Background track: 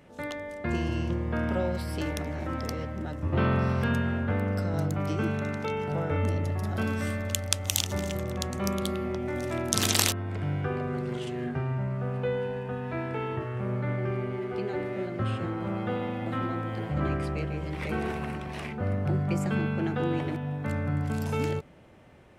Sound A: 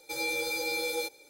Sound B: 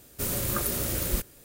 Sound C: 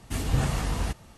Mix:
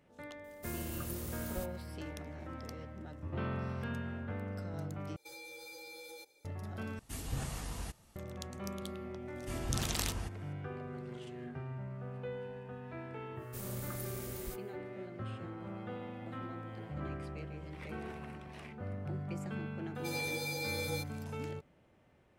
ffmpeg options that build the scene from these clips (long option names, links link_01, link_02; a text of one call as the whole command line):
ffmpeg -i bed.wav -i cue0.wav -i cue1.wav -i cue2.wav -filter_complex "[2:a]asplit=2[link_01][link_02];[1:a]asplit=2[link_03][link_04];[3:a]asplit=2[link_05][link_06];[0:a]volume=-12.5dB[link_07];[link_03]acompressor=threshold=-34dB:ratio=6:attack=3.2:release=140:knee=1:detection=peak[link_08];[link_05]highshelf=frequency=6200:gain=10[link_09];[link_06]bandreject=frequency=4000:width=15[link_10];[link_07]asplit=3[link_11][link_12][link_13];[link_11]atrim=end=5.164[link_14];[link_08]atrim=end=1.29,asetpts=PTS-STARTPTS,volume=-12dB[link_15];[link_12]atrim=start=6.446:end=6.994[link_16];[link_09]atrim=end=1.17,asetpts=PTS-STARTPTS,volume=-13.5dB[link_17];[link_13]atrim=start=8.156[link_18];[link_01]atrim=end=1.44,asetpts=PTS-STARTPTS,volume=-16dB,afade=type=in:duration=0.004:curve=hsin,afade=type=out:start_time=1.436:duration=0.004:curve=hsin,adelay=440[link_19];[link_10]atrim=end=1.17,asetpts=PTS-STARTPTS,volume=-12dB,afade=type=in:duration=0.004:curve=hsin,afade=type=out:start_time=1.166:duration=0.004:curve=hsin,adelay=9360[link_20];[link_02]atrim=end=1.44,asetpts=PTS-STARTPTS,volume=-16.5dB,afade=type=in:duration=0.1,afade=type=out:start_time=1.34:duration=0.1,adelay=13340[link_21];[link_04]atrim=end=1.29,asetpts=PTS-STARTPTS,volume=-6.5dB,afade=type=in:duration=0.004:curve=hsin,afade=type=out:start_time=1.286:duration=0.004:curve=hsin,adelay=19950[link_22];[link_14][link_15]acrossfade=duration=0.004:curve1=hsin:curve2=hsin[link_23];[link_23][link_16]acrossfade=duration=0.004:curve1=hsin:curve2=hsin[link_24];[link_24][link_17]acrossfade=duration=0.004:curve1=hsin:curve2=hsin[link_25];[link_25][link_18]acrossfade=duration=0.004:curve1=hsin:curve2=hsin[link_26];[link_26][link_19][link_20][link_21][link_22]amix=inputs=5:normalize=0" out.wav